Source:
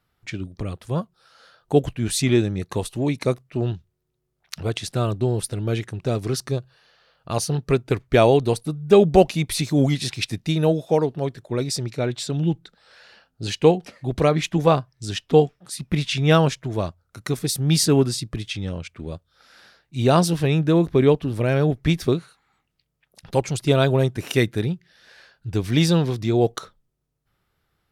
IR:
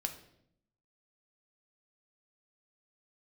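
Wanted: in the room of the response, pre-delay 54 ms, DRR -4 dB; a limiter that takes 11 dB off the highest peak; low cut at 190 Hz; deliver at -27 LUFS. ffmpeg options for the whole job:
-filter_complex "[0:a]highpass=190,alimiter=limit=0.237:level=0:latency=1,asplit=2[s0][s1];[1:a]atrim=start_sample=2205,adelay=54[s2];[s1][s2]afir=irnorm=-1:irlink=0,volume=1.5[s3];[s0][s3]amix=inputs=2:normalize=0,volume=0.501"

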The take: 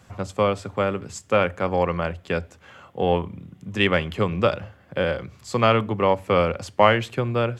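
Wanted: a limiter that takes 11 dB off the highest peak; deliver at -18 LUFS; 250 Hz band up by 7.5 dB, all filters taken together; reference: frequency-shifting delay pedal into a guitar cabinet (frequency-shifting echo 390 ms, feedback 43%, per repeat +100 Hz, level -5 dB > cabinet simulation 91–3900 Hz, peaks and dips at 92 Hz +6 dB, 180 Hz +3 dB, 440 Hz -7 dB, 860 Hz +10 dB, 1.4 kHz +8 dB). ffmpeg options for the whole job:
-filter_complex "[0:a]equalizer=f=250:t=o:g=9,alimiter=limit=0.282:level=0:latency=1,asplit=6[s0][s1][s2][s3][s4][s5];[s1]adelay=390,afreqshift=100,volume=0.562[s6];[s2]adelay=780,afreqshift=200,volume=0.243[s7];[s3]adelay=1170,afreqshift=300,volume=0.104[s8];[s4]adelay=1560,afreqshift=400,volume=0.0447[s9];[s5]adelay=1950,afreqshift=500,volume=0.0193[s10];[s0][s6][s7][s8][s9][s10]amix=inputs=6:normalize=0,highpass=91,equalizer=f=92:t=q:w=4:g=6,equalizer=f=180:t=q:w=4:g=3,equalizer=f=440:t=q:w=4:g=-7,equalizer=f=860:t=q:w=4:g=10,equalizer=f=1400:t=q:w=4:g=8,lowpass=f=3900:w=0.5412,lowpass=f=3900:w=1.3066,volume=1.5"

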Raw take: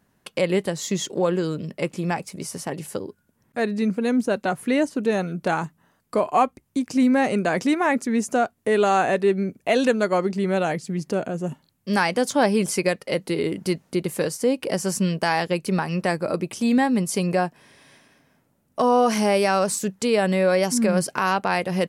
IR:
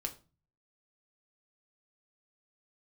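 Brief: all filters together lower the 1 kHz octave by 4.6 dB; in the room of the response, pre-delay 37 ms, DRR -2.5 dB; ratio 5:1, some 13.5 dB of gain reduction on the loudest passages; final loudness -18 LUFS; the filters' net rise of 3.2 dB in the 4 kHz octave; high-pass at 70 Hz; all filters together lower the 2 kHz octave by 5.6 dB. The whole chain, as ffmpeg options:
-filter_complex "[0:a]highpass=70,equalizer=f=1000:t=o:g=-5.5,equalizer=f=2000:t=o:g=-7,equalizer=f=4000:t=o:g=6.5,acompressor=threshold=0.0251:ratio=5,asplit=2[s0][s1];[1:a]atrim=start_sample=2205,adelay=37[s2];[s1][s2]afir=irnorm=-1:irlink=0,volume=1.33[s3];[s0][s3]amix=inputs=2:normalize=0,volume=4.22"

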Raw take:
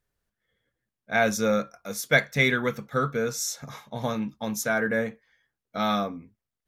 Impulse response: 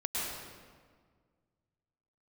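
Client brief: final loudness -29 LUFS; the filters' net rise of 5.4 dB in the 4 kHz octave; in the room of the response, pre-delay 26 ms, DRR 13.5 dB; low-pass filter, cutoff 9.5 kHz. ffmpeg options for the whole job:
-filter_complex "[0:a]lowpass=9500,equalizer=f=4000:t=o:g=6.5,asplit=2[s0][s1];[1:a]atrim=start_sample=2205,adelay=26[s2];[s1][s2]afir=irnorm=-1:irlink=0,volume=0.106[s3];[s0][s3]amix=inputs=2:normalize=0,volume=0.668"

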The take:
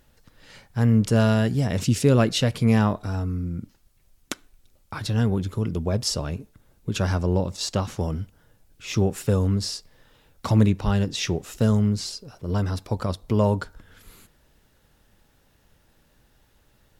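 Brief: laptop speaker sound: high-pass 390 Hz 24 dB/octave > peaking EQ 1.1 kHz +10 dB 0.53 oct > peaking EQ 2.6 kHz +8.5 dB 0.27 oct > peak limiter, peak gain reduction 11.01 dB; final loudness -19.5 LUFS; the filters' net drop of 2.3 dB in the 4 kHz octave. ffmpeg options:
-af "highpass=f=390:w=0.5412,highpass=f=390:w=1.3066,equalizer=f=1100:t=o:w=0.53:g=10,equalizer=f=2600:t=o:w=0.27:g=8.5,equalizer=f=4000:t=o:g=-5,volume=3.76,alimiter=limit=0.562:level=0:latency=1"

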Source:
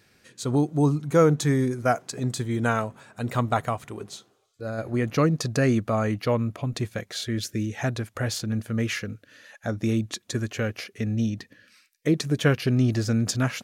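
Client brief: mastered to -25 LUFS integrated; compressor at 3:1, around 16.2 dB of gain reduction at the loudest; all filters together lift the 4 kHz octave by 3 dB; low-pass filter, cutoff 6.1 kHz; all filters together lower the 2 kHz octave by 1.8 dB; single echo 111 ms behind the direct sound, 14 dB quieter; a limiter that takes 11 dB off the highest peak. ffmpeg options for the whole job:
-af "lowpass=6100,equalizer=f=2000:t=o:g=-3.5,equalizer=f=4000:t=o:g=5.5,acompressor=threshold=0.0126:ratio=3,alimiter=level_in=2.24:limit=0.0631:level=0:latency=1,volume=0.447,aecho=1:1:111:0.2,volume=5.96"

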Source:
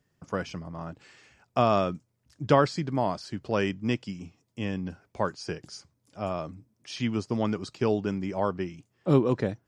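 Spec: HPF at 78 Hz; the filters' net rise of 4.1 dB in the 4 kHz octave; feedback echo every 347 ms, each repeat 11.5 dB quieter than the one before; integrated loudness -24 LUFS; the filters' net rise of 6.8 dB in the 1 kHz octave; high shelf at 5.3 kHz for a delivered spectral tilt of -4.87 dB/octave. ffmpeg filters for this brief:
-af "highpass=78,equalizer=f=1000:t=o:g=8.5,equalizer=f=4000:t=o:g=8.5,highshelf=f=5300:g=-8,aecho=1:1:347|694|1041:0.266|0.0718|0.0194,volume=1.26"

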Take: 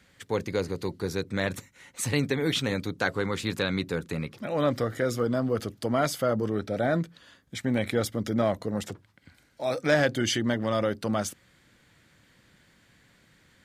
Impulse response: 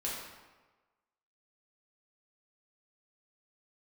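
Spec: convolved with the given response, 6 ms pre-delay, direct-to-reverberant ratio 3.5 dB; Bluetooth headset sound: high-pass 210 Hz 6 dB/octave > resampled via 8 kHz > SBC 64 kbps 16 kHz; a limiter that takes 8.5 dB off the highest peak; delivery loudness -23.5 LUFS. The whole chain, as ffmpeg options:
-filter_complex "[0:a]alimiter=limit=0.141:level=0:latency=1,asplit=2[s0][s1];[1:a]atrim=start_sample=2205,adelay=6[s2];[s1][s2]afir=irnorm=-1:irlink=0,volume=0.447[s3];[s0][s3]amix=inputs=2:normalize=0,highpass=f=210:p=1,aresample=8000,aresample=44100,volume=2.11" -ar 16000 -c:a sbc -b:a 64k

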